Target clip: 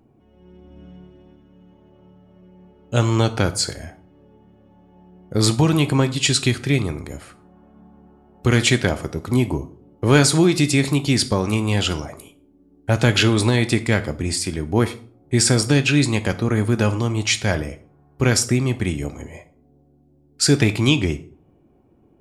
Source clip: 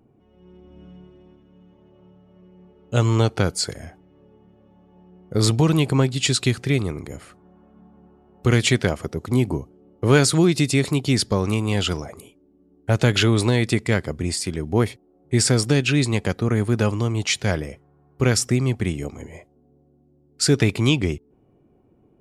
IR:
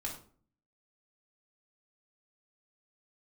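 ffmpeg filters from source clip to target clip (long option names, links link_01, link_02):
-filter_complex "[0:a]asplit=2[link_01][link_02];[1:a]atrim=start_sample=2205,lowshelf=frequency=450:gain=-7[link_03];[link_02][link_03]afir=irnorm=-1:irlink=0,volume=-5dB[link_04];[link_01][link_04]amix=inputs=2:normalize=0"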